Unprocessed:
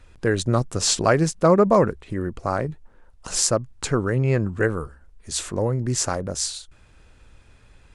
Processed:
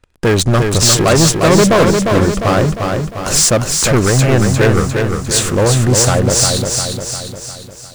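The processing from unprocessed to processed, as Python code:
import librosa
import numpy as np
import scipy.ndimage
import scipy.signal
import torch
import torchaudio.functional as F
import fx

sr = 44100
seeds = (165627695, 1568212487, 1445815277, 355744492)

y = fx.leveller(x, sr, passes=5)
y = fx.echo_crushed(y, sr, ms=352, feedback_pct=55, bits=7, wet_db=-4.5)
y = F.gain(torch.from_numpy(y), -3.0).numpy()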